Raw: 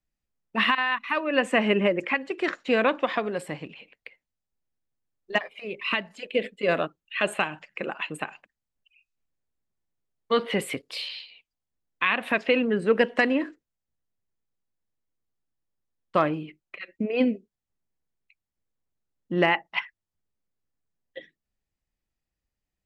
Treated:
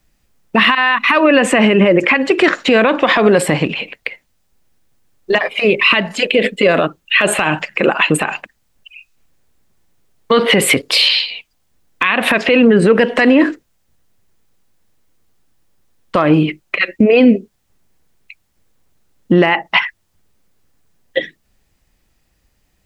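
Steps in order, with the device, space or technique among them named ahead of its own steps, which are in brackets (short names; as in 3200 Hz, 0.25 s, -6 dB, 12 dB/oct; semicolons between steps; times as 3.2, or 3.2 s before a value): loud club master (compressor 2.5:1, threshold -26 dBFS, peak gain reduction 7.5 dB; hard clip -13 dBFS, distortion -42 dB; maximiser +25 dB); gain -1 dB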